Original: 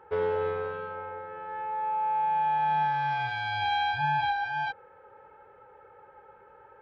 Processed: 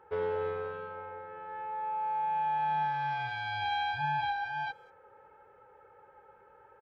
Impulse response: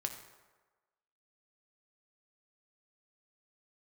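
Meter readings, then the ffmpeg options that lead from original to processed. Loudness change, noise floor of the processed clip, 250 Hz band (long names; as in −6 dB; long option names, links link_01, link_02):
−4.5 dB, −60 dBFS, can't be measured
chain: -filter_complex "[0:a]asplit=2[link_01][link_02];[link_02]adelay=190,highpass=300,lowpass=3400,asoftclip=type=hard:threshold=-28.5dB,volume=-23dB[link_03];[link_01][link_03]amix=inputs=2:normalize=0,volume=-4.5dB"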